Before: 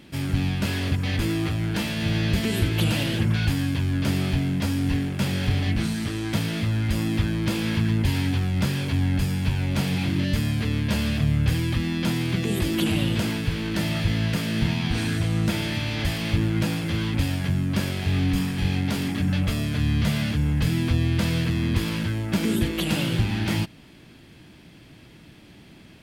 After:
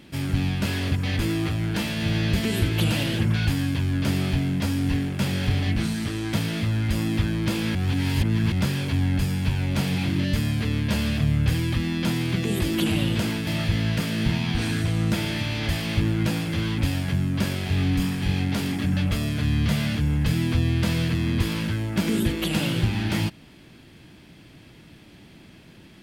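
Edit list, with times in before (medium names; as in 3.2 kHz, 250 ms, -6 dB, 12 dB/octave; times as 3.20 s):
7.75–8.52 s: reverse
13.47–13.83 s: delete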